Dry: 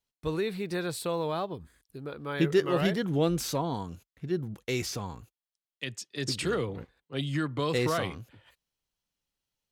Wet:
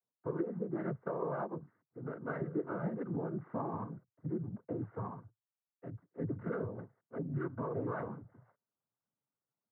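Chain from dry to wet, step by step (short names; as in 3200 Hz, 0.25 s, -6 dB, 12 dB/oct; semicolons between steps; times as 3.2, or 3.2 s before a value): steep low-pass 1500 Hz 72 dB/oct; compressor 12:1, threshold -30 dBFS, peak gain reduction 12 dB; noise vocoder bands 16; gain -2.5 dB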